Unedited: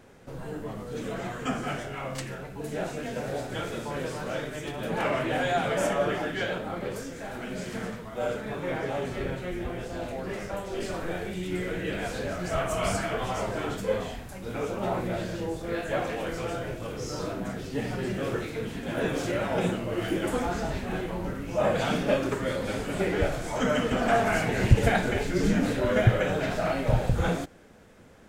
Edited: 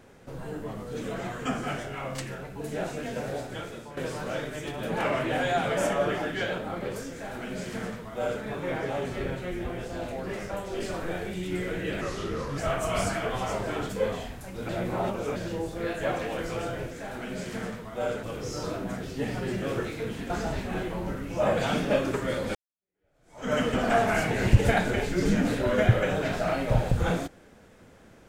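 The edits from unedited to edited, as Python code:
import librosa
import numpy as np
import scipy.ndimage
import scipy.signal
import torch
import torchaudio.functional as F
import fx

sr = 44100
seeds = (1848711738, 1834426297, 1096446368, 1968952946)

y = fx.edit(x, sr, fx.fade_out_to(start_s=3.23, length_s=0.74, floor_db=-11.5),
    fx.duplicate(start_s=7.11, length_s=1.32, to_s=16.79),
    fx.speed_span(start_s=12.01, length_s=0.45, speed=0.79),
    fx.reverse_span(start_s=14.57, length_s=0.67),
    fx.cut(start_s=18.86, length_s=1.62),
    fx.fade_in_span(start_s=22.73, length_s=0.98, curve='exp'), tone=tone)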